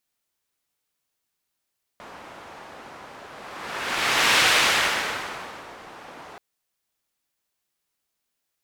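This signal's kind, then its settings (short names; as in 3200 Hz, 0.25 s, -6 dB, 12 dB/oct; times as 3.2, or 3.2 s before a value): whoosh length 4.38 s, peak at 2.44, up 1.26 s, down 1.46 s, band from 920 Hz, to 2400 Hz, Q 0.86, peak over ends 24.5 dB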